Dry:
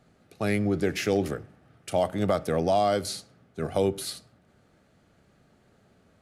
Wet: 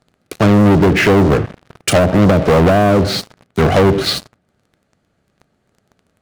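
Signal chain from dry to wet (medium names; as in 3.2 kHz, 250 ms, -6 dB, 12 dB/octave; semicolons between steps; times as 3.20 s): low-pass that closes with the level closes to 370 Hz, closed at -20 dBFS; waveshaping leveller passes 5; trim +7.5 dB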